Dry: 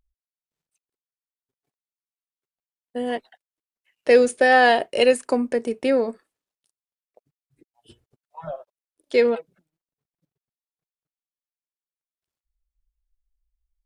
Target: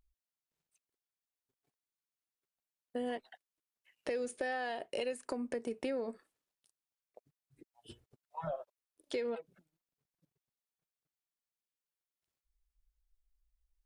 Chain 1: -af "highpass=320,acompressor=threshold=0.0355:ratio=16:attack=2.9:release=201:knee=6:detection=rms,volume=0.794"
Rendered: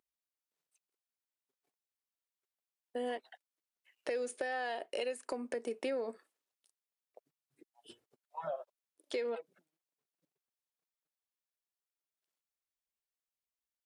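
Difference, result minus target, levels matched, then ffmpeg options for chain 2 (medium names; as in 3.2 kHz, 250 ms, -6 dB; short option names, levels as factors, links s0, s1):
250 Hz band -4.0 dB
-af "acompressor=threshold=0.0355:ratio=16:attack=2.9:release=201:knee=6:detection=rms,volume=0.794"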